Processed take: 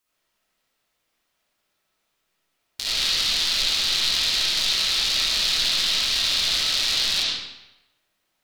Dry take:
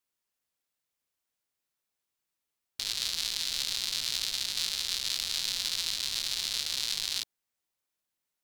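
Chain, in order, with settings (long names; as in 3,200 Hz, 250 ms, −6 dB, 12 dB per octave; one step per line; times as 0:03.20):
in parallel at +2 dB: brickwall limiter −22.5 dBFS, peak gain reduction 10 dB
on the sum: convolution reverb RT60 0.95 s, pre-delay 25 ms, DRR −9 dB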